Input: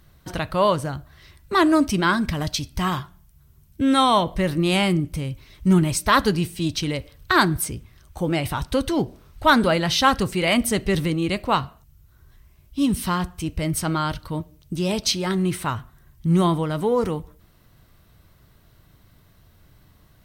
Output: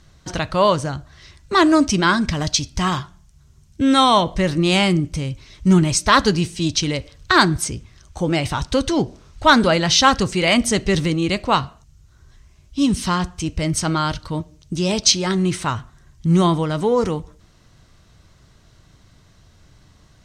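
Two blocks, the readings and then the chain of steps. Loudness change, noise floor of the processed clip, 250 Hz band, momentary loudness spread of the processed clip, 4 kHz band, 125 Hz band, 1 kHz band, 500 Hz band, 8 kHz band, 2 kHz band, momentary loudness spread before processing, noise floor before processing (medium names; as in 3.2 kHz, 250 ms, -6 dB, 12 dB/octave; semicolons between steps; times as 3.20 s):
+3.5 dB, -53 dBFS, +3.0 dB, 13 LU, +5.5 dB, +3.0 dB, +3.0 dB, +3.0 dB, +7.0 dB, +3.5 dB, 13 LU, -56 dBFS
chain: resonant low-pass 6.6 kHz, resonance Q 2.3; trim +3 dB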